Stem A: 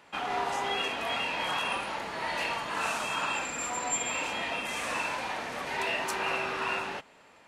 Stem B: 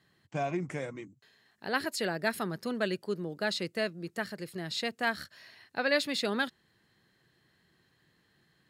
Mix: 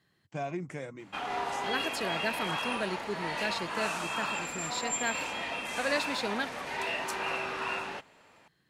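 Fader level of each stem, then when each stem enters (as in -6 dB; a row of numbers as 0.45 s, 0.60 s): -2.5 dB, -3.0 dB; 1.00 s, 0.00 s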